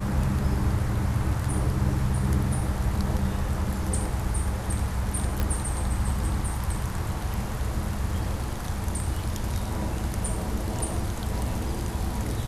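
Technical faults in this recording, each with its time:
5.4 pop -13 dBFS

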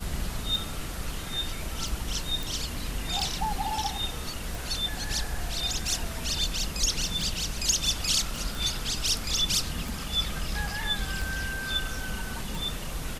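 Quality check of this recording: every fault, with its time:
tick 45 rpm
2.43 pop
8.36 pop

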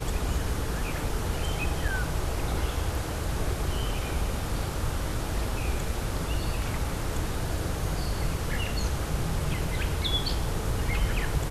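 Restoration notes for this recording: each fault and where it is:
1.88 gap 4.1 ms

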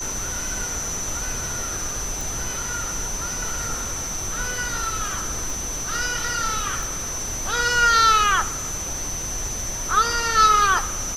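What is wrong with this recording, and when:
tone 6100 Hz -29 dBFS
2.21 pop
5.5 pop
6.83 pop

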